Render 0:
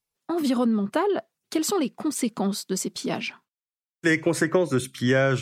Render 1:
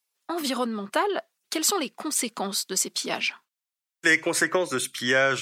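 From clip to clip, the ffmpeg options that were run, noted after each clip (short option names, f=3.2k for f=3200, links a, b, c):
-af "highpass=f=1.2k:p=1,volume=6dB"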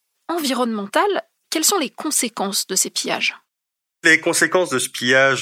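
-af "bandreject=f=4.1k:w=26,volume=7dB"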